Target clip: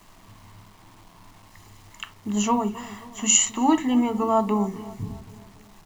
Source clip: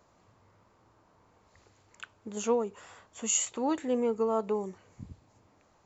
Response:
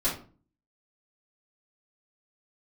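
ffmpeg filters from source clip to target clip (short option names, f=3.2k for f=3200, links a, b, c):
-filter_complex "[0:a]equalizer=f=2.7k:t=o:w=0.33:g=4.5,aecho=1:1:1:0.82,acrusher=bits=9:mix=0:aa=0.000001,asplit=2[a][b];[b]adelay=267,lowpass=f=1.4k:p=1,volume=-16dB,asplit=2[c][d];[d]adelay=267,lowpass=f=1.4k:p=1,volume=0.54,asplit=2[e][f];[f]adelay=267,lowpass=f=1.4k:p=1,volume=0.54,asplit=2[g][h];[h]adelay=267,lowpass=f=1.4k:p=1,volume=0.54,asplit=2[i][j];[j]adelay=267,lowpass=f=1.4k:p=1,volume=0.54[k];[a][c][e][g][i][k]amix=inputs=6:normalize=0,asplit=2[l][m];[1:a]atrim=start_sample=2205,atrim=end_sample=3969,lowshelf=f=250:g=12[n];[m][n]afir=irnorm=-1:irlink=0,volume=-17.5dB[o];[l][o]amix=inputs=2:normalize=0,volume=6dB"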